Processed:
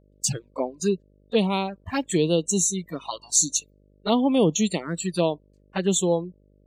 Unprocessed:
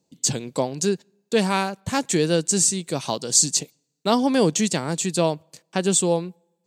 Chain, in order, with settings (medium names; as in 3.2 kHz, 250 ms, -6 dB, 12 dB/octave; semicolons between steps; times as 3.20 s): touch-sensitive flanger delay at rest 3.5 ms, full sweep at -17.5 dBFS; spectral noise reduction 29 dB; mains buzz 50 Hz, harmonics 12, -59 dBFS -4 dB/octave